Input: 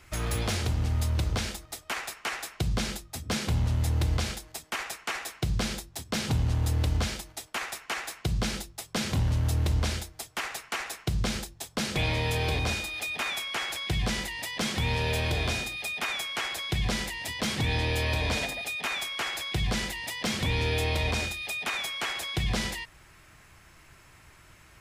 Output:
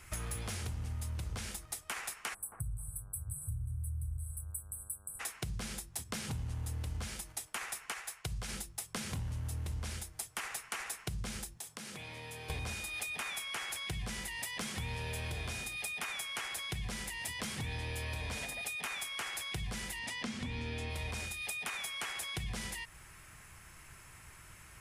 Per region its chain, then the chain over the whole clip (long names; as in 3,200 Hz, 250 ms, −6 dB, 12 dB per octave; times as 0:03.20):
0:02.33–0:05.19: linear-phase brick-wall band-stop 150–7,800 Hz + hum with harmonics 100 Hz, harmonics 16, −63 dBFS −3 dB per octave + bucket-brigade delay 268 ms, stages 2,048, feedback 32%, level −15.5 dB
0:07.92–0:08.49: parametric band 250 Hz −13 dB 0.76 octaves + expander for the loud parts, over −40 dBFS
0:11.57–0:12.50: high-pass filter 150 Hz + downward compressor 8 to 1, threshold −42 dBFS
0:19.99–0:20.90: low-pass filter 6,700 Hz + parametric band 240 Hz +14 dB 0.28 octaves
whole clip: graphic EQ with 15 bands 630 Hz −4 dB, 4,000 Hz −4 dB, 10,000 Hz +8 dB; downward compressor 5 to 1, threshold −37 dBFS; parametric band 310 Hz −5 dB 0.78 octaves